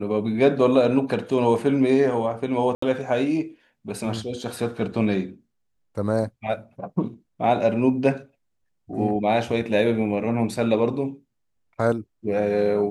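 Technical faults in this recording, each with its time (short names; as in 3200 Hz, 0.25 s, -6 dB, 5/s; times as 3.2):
2.75–2.82 gap 74 ms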